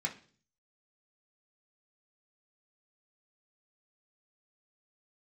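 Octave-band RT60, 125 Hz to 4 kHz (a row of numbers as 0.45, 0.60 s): 0.75, 0.60, 0.50, 0.40, 0.40, 0.50 s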